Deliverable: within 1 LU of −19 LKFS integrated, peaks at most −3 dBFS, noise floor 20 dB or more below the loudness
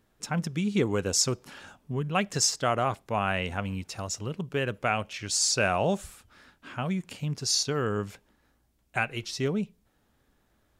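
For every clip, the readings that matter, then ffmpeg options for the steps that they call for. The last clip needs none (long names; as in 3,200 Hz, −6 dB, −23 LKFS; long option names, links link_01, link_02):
integrated loudness −28.5 LKFS; sample peak −11.5 dBFS; target loudness −19.0 LKFS
→ -af "volume=9.5dB,alimiter=limit=-3dB:level=0:latency=1"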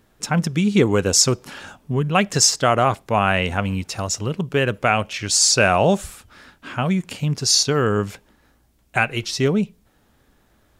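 integrated loudness −19.0 LKFS; sample peak −3.0 dBFS; background noise floor −60 dBFS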